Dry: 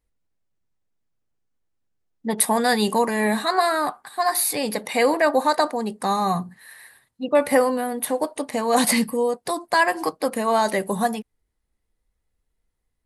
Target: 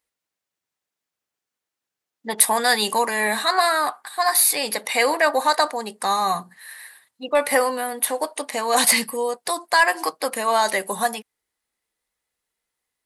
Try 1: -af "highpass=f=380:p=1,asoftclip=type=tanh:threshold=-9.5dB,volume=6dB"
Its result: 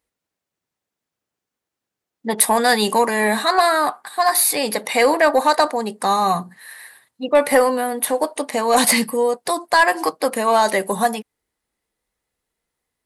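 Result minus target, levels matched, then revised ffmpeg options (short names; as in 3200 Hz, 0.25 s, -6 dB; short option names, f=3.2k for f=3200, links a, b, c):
500 Hz band +3.0 dB
-af "highpass=f=1.2k:p=1,asoftclip=type=tanh:threshold=-9.5dB,volume=6dB"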